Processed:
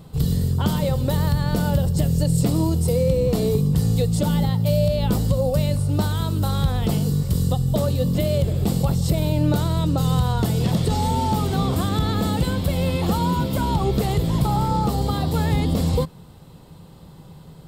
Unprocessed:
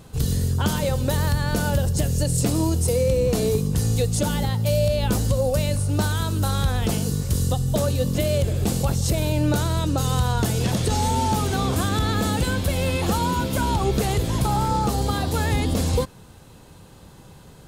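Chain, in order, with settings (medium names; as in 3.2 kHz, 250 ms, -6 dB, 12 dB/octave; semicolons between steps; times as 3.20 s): graphic EQ with 31 bands 160 Hz +9 dB, 1.6 kHz -7 dB, 2.5 kHz -5 dB, 6.3 kHz -10 dB, 10 kHz -8 dB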